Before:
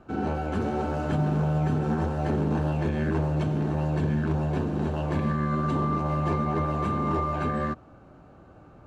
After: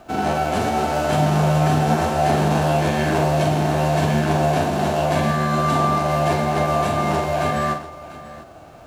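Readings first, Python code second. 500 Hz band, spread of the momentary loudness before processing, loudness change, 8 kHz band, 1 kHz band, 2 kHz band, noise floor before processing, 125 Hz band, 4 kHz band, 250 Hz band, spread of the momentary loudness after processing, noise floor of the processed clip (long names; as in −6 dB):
+10.5 dB, 3 LU, +7.5 dB, can't be measured, +11.0 dB, +12.0 dB, −51 dBFS, +5.0 dB, +17.5 dB, +4.5 dB, 5 LU, −42 dBFS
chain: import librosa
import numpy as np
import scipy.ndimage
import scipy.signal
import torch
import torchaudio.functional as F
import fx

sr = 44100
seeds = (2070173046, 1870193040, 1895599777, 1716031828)

y = fx.envelope_flatten(x, sr, power=0.6)
y = fx.peak_eq(y, sr, hz=680.0, db=14.0, octaves=0.32)
y = fx.echo_multitap(y, sr, ms=(45, 118, 696), db=(-6.0, -14.0, -16.0))
y = F.gain(torch.from_numpy(y), 3.5).numpy()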